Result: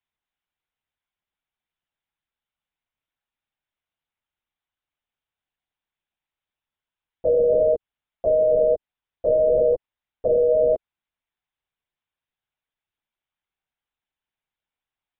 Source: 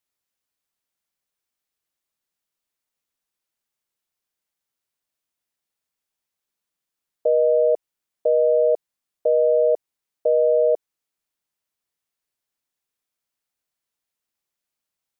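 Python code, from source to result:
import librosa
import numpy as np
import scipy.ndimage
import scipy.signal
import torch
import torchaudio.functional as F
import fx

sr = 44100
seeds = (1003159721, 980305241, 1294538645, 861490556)

p1 = scipy.signal.sosfilt(scipy.signal.butter(4, 370.0, 'highpass', fs=sr, output='sos'), x)
p2 = fx.lpc_vocoder(p1, sr, seeds[0], excitation='whisper', order=10)
p3 = fx.rider(p2, sr, range_db=4, speed_s=0.5)
p4 = p2 + (p3 * librosa.db_to_amplitude(2.5))
y = p4 * librosa.db_to_amplitude(-6.5)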